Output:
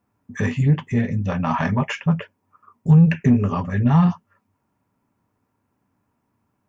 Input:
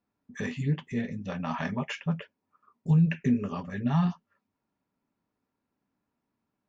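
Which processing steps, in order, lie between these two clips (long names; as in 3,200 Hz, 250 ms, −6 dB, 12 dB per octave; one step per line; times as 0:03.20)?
graphic EQ with 15 bands 100 Hz +11 dB, 1,000 Hz +4 dB, 4,000 Hz −7 dB
in parallel at −3 dB: soft clipping −22.5 dBFS, distortion −10 dB
on the sum: level +4.5 dB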